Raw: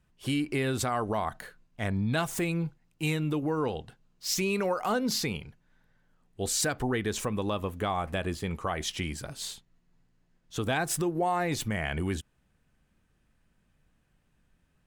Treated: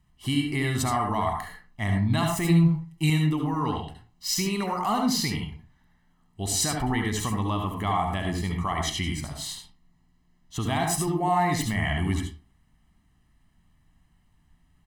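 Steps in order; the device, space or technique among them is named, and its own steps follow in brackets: microphone above a desk (comb 1 ms, depth 78%; reverb RT60 0.35 s, pre-delay 64 ms, DRR 2 dB); 2.44–3.1 comb 6.1 ms, depth 78%

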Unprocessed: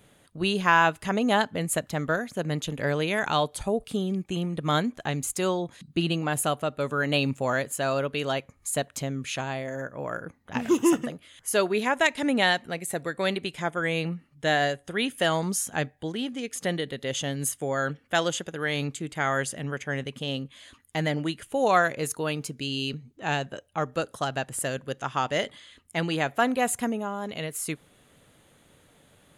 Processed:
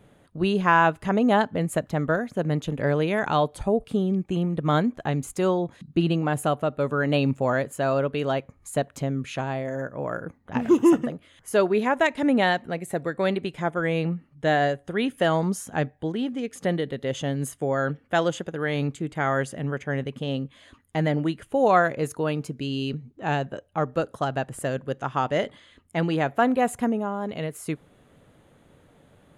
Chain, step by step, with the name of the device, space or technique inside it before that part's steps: through cloth (high shelf 2100 Hz -13.5 dB); 9.64–10.38 high shelf 4900 Hz +5 dB; gain +4.5 dB

